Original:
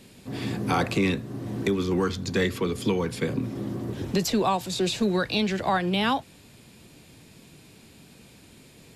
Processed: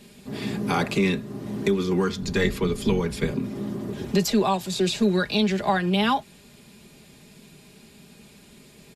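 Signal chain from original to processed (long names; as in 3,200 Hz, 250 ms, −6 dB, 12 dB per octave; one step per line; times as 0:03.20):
0:02.21–0:03.31: sub-octave generator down 1 octave, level −1 dB
comb filter 4.9 ms, depth 57%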